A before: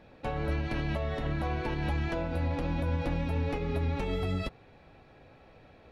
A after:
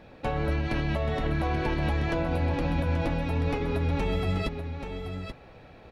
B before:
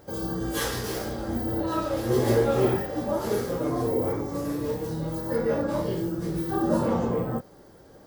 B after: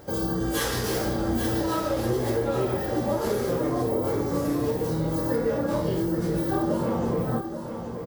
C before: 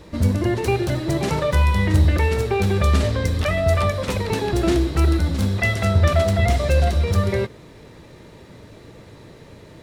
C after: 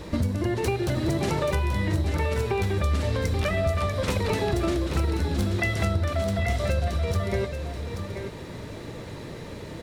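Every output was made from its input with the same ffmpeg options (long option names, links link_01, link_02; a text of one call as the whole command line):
ffmpeg -i in.wav -filter_complex "[0:a]acompressor=threshold=-27dB:ratio=12,asplit=2[link_01][link_02];[link_02]aecho=0:1:832:0.398[link_03];[link_01][link_03]amix=inputs=2:normalize=0,volume=5dB" out.wav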